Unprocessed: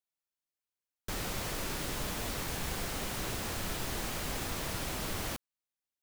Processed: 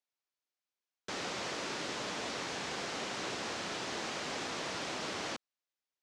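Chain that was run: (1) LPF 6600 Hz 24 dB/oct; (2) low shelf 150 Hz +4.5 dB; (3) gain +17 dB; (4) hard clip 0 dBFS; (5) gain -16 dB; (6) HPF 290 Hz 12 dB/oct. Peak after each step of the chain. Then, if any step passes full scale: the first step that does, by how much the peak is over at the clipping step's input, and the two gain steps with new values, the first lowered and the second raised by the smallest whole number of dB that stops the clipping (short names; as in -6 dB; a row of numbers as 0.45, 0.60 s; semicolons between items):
-23.5, -21.0, -4.0, -4.0, -20.0, -25.0 dBFS; no overload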